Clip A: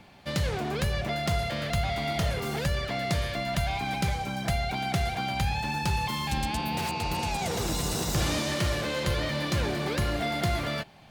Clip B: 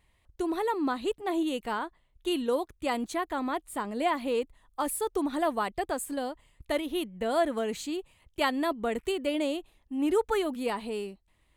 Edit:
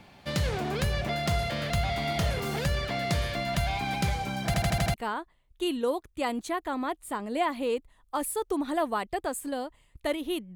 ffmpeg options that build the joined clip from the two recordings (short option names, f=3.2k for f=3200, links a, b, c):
-filter_complex "[0:a]apad=whole_dur=10.55,atrim=end=10.55,asplit=6[a][b][c][d][e][f];[a]atrim=end=4.542[g];[b]atrim=start=4.458:end=4.542[h];[c]atrim=start=4.458:end=4.542[i];[d]atrim=start=4.458:end=4.542[j];[e]atrim=start=4.458:end=4.542[k];[f]atrim=start=4.458:end=4.542[l];[1:a]atrim=start=1.588:end=7.2[m];[g][h]acrossfade=d=0.004:c1=hsin:c2=hsin[n];[n][i]acrossfade=d=0.004:c1=hsin:c2=hsin[o];[o][j]acrossfade=d=0.004:c1=hsin:c2=hsin[p];[p][k]acrossfade=d=0.004:c1=hsin:c2=hsin[q];[q][l]acrossfade=d=0.004:c1=hsin:c2=hsin[r];[r][m]acrossfade=d=0.004:c1=hsin:c2=hsin"